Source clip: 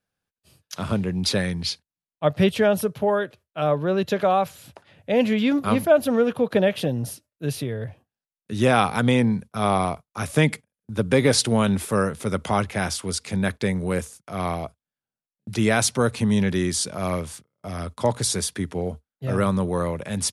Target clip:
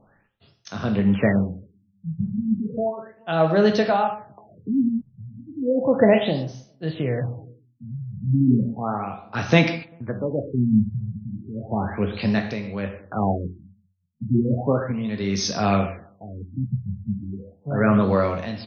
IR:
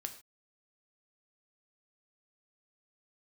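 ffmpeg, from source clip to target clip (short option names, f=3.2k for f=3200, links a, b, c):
-filter_complex "[0:a]asetrate=48000,aresample=44100,asplit=2[a][b];[b]adelay=19,volume=-13.5dB[c];[a][c]amix=inputs=2:normalize=0,asplit=2[d][e];[e]acompressor=threshold=-30dB:ratio=6,volume=-2dB[f];[d][f]amix=inputs=2:normalize=0,asplit=2[g][h];[h]adelay=196,lowpass=f=1.3k:p=1,volume=-24dB,asplit=2[i][j];[j]adelay=196,lowpass=f=1.3k:p=1,volume=0.52,asplit=2[k][l];[l]adelay=196,lowpass=f=1.3k:p=1,volume=0.52[m];[g][i][k][m]amix=inputs=4:normalize=0,tremolo=f=0.83:d=0.76[n];[1:a]atrim=start_sample=2205,afade=t=out:st=0.13:d=0.01,atrim=end_sample=6174,asetrate=22932,aresample=44100[o];[n][o]afir=irnorm=-1:irlink=0,areverse,acompressor=mode=upward:threshold=-36dB:ratio=2.5,areverse,afftfilt=real='re*lt(b*sr/1024,200*pow(6500/200,0.5+0.5*sin(2*PI*0.34*pts/sr)))':imag='im*lt(b*sr/1024,200*pow(6500/200,0.5+0.5*sin(2*PI*0.34*pts/sr)))':win_size=1024:overlap=0.75,volume=1.5dB"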